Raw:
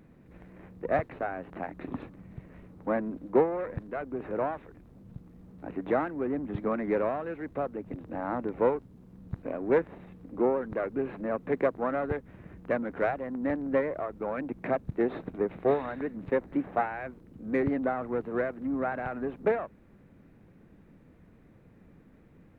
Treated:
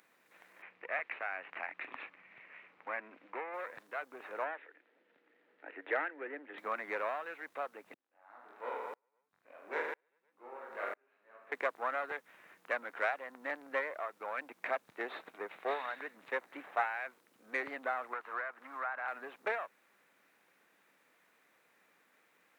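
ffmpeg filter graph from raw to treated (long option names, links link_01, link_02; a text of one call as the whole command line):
ffmpeg -i in.wav -filter_complex "[0:a]asettb=1/sr,asplit=3[link_01][link_02][link_03];[link_01]atrim=end=0.624[link_04];[link_02]atrim=start=0.62:end=3.54,asetpts=PTS-STARTPTS,afade=type=in:duration=0.004:curve=qsin,afade=type=out:start_time=2.916:duration=0.004:curve=qsin,lowpass=frequency=2400:width_type=q:width=3,acompressor=threshold=-33dB:ratio=2:attack=3.2:release=140:knee=1:detection=peak[link_05];[link_03]atrim=start=3.536[link_06];[link_04][link_05]acrossfade=duration=0.004:curve1=hsin:curve2=qsin[link_07];[link_07][link_06]acrossfade=duration=0.004:curve1=qsin:curve2=hsin,asettb=1/sr,asplit=3[link_08][link_09][link_10];[link_08]atrim=end=4.444[link_11];[link_09]atrim=start=4.44:end=6.58,asetpts=PTS-STARTPTS,afade=type=in:duration=0.004:curve=qsin,afade=type=out:start_time=2.136:duration=0.004:curve=qsin,asoftclip=type=hard:threshold=-16dB,highpass=frequency=260:width=0.5412,highpass=frequency=260:width=1.3066,equalizer=frequency=300:width_type=q:width=4:gain=4,equalizer=frequency=470:width_type=q:width=4:gain=5,equalizer=frequency=750:width_type=q:width=4:gain=-4,equalizer=frequency=1100:width_type=q:width=4:gain=-10,equalizer=frequency=1800:width_type=q:width=4:gain=6,lowpass=frequency=3000:width=0.5412,lowpass=frequency=3000:width=1.3066[link_12];[link_10]atrim=start=6.576[link_13];[link_11][link_12]acrossfade=duration=0.004:curve1=hsin:curve2=qsin[link_14];[link_14][link_13]acrossfade=duration=0.004:curve1=qsin:curve2=hsin,asettb=1/sr,asplit=3[link_15][link_16][link_17];[link_15]atrim=end=7.944[link_18];[link_16]atrim=start=7.94:end=11.52,asetpts=PTS-STARTPTS,afade=type=in:duration=0.004:curve=qsin,afade=type=out:start_time=3.576:duration=0.004:curve=qsin,aecho=1:1:20|45|76.25|115.3|164.1|225.2|301.5|396.8|516:0.794|0.631|0.501|0.398|0.316|0.251|0.2|0.158|0.126,atrim=end_sample=157878,aeval=exprs='val(0)*pow(10,-39*if(lt(mod(-1*n/s,1),2*abs(-1)/1000),1-mod(-1*n/s,1)/(2*abs(-1)/1000),(mod(-1*n/s,1)-2*abs(-1)/1000)/(1-2*abs(-1)/1000))/20)':channel_layout=same[link_19];[link_17]atrim=start=11.516[link_20];[link_18][link_19]acrossfade=duration=0.004:curve1=hsin:curve2=qsin[link_21];[link_21][link_20]acrossfade=duration=0.004:curve1=qsin:curve2=hsin,asettb=1/sr,asplit=3[link_22][link_23][link_24];[link_22]atrim=end=18.134[link_25];[link_23]atrim=start=18.13:end=19.08,asetpts=PTS-STARTPTS,afade=type=in:duration=0.004:curve=qsin,afade=type=out:start_time=0.946:duration=0.004:curve=qsin,equalizer=frequency=1200:width_type=o:width=1.9:gain=12,acrossover=split=200|1000[link_26][link_27][link_28];[link_26]acompressor=threshold=-52dB:ratio=4[link_29];[link_27]acompressor=threshold=-38dB:ratio=4[link_30];[link_28]acompressor=threshold=-41dB:ratio=4[link_31];[link_29][link_30][link_31]amix=inputs=3:normalize=0[link_32];[link_24]atrim=start=19.076[link_33];[link_25][link_32]acrossfade=duration=0.004:curve1=hsin:curve2=qsin[link_34];[link_34][link_33]acrossfade=duration=0.004:curve1=qsin:curve2=hsin,highpass=990,highshelf=frequency=3000:gain=8.5" out.wav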